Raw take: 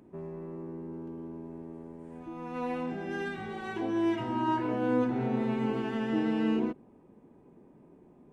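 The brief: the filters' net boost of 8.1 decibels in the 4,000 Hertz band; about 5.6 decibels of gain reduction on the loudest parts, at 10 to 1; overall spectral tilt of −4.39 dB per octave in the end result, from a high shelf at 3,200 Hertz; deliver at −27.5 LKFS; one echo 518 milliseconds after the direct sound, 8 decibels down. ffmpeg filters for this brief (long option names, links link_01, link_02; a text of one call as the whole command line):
ffmpeg -i in.wav -af "highshelf=frequency=3200:gain=5.5,equalizer=frequency=4000:width_type=o:gain=8.5,acompressor=threshold=-29dB:ratio=10,aecho=1:1:518:0.398,volume=8dB" out.wav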